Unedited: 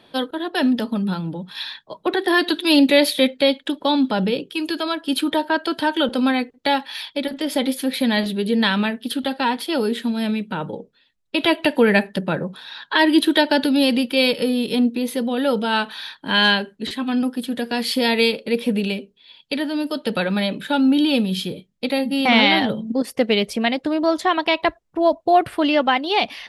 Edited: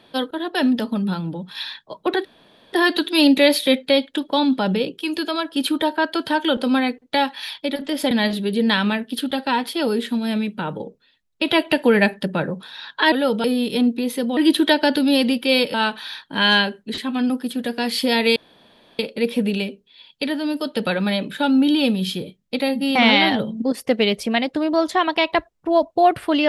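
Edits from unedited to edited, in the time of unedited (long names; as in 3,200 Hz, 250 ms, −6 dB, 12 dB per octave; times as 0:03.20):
0:02.25: splice in room tone 0.48 s
0:07.63–0:08.04: remove
0:13.05–0:14.42: swap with 0:15.35–0:15.67
0:18.29: splice in room tone 0.63 s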